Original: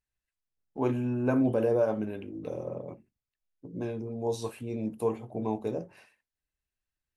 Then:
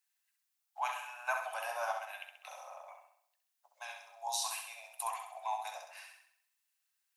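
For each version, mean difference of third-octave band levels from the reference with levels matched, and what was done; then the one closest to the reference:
22.0 dB: Butterworth high-pass 690 Hz 72 dB per octave
spectral tilt +2.5 dB per octave
on a send: flutter between parallel walls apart 11.3 metres, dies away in 0.66 s
on the sum: level +2.5 dB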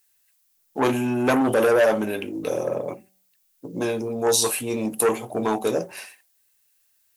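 7.5 dB: hum removal 190.3 Hz, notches 4
in parallel at −11 dB: sine wavefolder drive 10 dB, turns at −15 dBFS
on the sum: RIAA equalisation recording
level +7 dB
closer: second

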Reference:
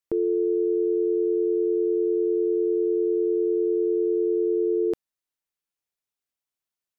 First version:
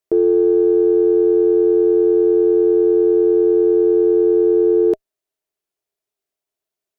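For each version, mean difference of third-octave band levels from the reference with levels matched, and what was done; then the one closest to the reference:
4.0 dB: in parallel at −11 dB: asymmetric clip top −37.5 dBFS, bottom −19.5 dBFS
on the sum: hollow resonant body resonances 400/630 Hz, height 14 dB, ringing for 45 ms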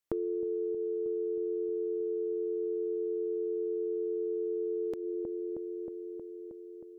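1.0 dB: on a send: delay with a low-pass on its return 315 ms, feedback 73%, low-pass 660 Hz, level −6.5 dB
on the sum: downward compressor, threshold −31 dBFS, peak gain reduction 10 dB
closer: second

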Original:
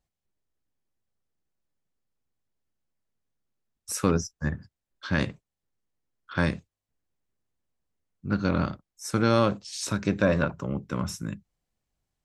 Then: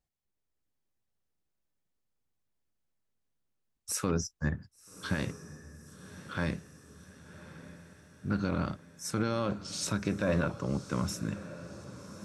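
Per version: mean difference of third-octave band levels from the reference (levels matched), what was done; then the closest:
6.0 dB: automatic gain control gain up to 3.5 dB
brickwall limiter −14 dBFS, peak gain reduction 9 dB
feedback delay with all-pass diffusion 1,135 ms, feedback 56%, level −14.5 dB
level −5 dB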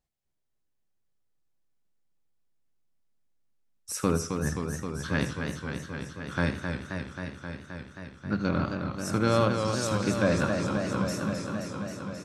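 9.5 dB: mains-hum notches 50/100 Hz
repeating echo 80 ms, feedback 37%, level −13.5 dB
feedback echo with a swinging delay time 265 ms, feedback 80%, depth 105 cents, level −6 dB
level −2.5 dB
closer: first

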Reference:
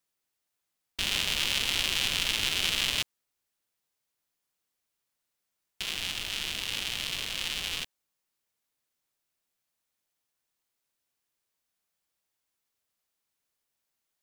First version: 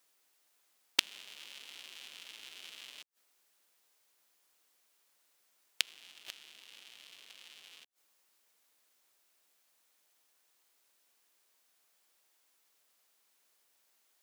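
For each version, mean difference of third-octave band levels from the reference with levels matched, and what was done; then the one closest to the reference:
12.5 dB: high-pass filter 320 Hz 12 dB per octave
gate with flip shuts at −18 dBFS, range −32 dB
in parallel at −11 dB: bit-depth reduction 6 bits, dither none
on the sum: level +10 dB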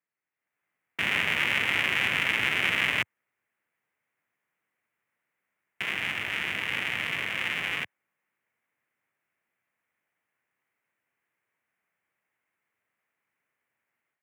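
6.5 dB: high-pass filter 96 Hz 24 dB per octave
high shelf with overshoot 3,000 Hz −13 dB, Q 3
automatic gain control gain up to 10.5 dB
level −5.5 dB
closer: second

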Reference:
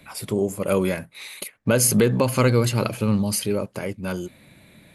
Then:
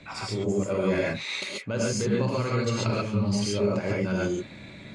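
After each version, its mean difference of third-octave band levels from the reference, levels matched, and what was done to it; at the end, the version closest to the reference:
9.0 dB: reversed playback
downward compressor 10 to 1, threshold −29 dBFS, peak gain reduction 16 dB
reversed playback
Butterworth low-pass 7,200 Hz 36 dB per octave
notch filter 3,000 Hz, Q 30
reverb whose tail is shaped and stops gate 160 ms rising, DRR −4.5 dB
level +1.5 dB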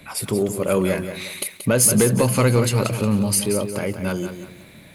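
5.0 dB: dynamic equaliser 9,400 Hz, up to +6 dB, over −40 dBFS, Q 2
in parallel at −2 dB: downward compressor, threshold −28 dBFS, peak gain reduction 16 dB
on the sum: soft clipping −7 dBFS, distortion −21 dB
feedback echo at a low word length 180 ms, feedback 35%, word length 8 bits, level −9 dB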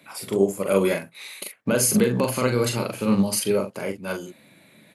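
3.0 dB: high-pass filter 190 Hz 12 dB per octave
brickwall limiter −14.5 dBFS, peak gain reduction 9 dB
double-tracking delay 41 ms −4 dB
expander for the loud parts 1.5 to 1, over −31 dBFS
level +4 dB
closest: third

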